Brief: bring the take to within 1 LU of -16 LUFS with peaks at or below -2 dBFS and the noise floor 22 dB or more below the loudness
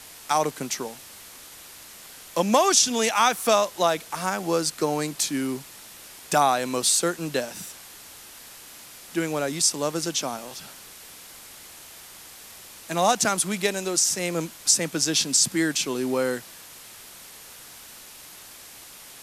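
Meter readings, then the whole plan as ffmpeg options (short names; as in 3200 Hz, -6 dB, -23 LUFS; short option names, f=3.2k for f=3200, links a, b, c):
noise floor -45 dBFS; noise floor target -46 dBFS; loudness -23.5 LUFS; peak -5.0 dBFS; loudness target -16.0 LUFS
-> -af "afftdn=nr=6:nf=-45"
-af "volume=7.5dB,alimiter=limit=-2dB:level=0:latency=1"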